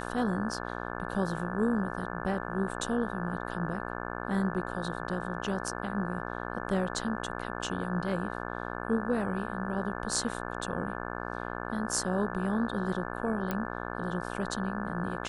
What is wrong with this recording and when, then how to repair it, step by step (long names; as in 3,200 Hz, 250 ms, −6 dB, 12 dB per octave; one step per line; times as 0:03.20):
mains buzz 60 Hz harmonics 29 −37 dBFS
0:13.51: click −17 dBFS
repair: click removal
hum removal 60 Hz, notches 29